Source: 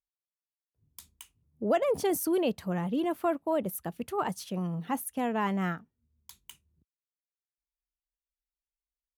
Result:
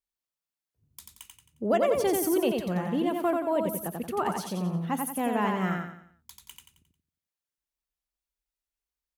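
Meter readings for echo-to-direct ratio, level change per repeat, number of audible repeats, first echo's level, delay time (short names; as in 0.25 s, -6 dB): -3.0 dB, -8.0 dB, 4, -3.5 dB, 89 ms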